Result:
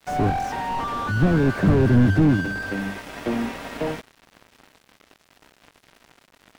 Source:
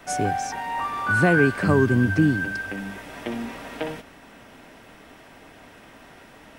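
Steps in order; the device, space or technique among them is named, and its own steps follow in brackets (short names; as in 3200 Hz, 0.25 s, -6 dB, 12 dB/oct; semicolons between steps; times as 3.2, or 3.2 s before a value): early transistor amplifier (crossover distortion -43 dBFS; slew limiter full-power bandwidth 23 Hz); gain +7.5 dB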